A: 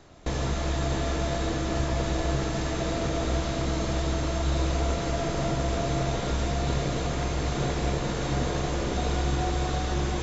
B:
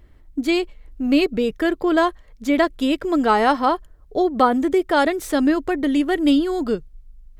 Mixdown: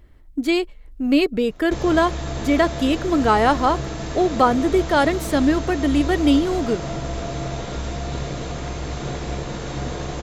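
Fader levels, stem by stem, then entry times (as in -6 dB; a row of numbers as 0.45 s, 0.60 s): -0.5 dB, 0.0 dB; 1.45 s, 0.00 s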